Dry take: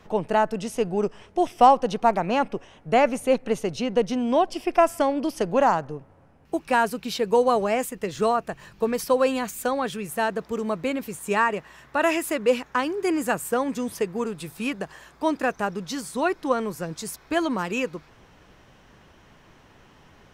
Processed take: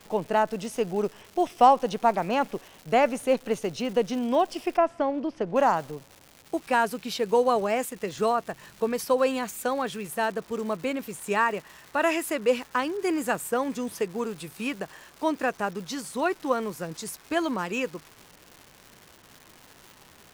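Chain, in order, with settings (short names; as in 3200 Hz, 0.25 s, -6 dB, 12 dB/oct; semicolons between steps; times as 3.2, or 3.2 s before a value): low shelf 94 Hz -8.5 dB; crackle 360/s -35 dBFS; 4.77–5.56 tape spacing loss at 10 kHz 26 dB; gain -2 dB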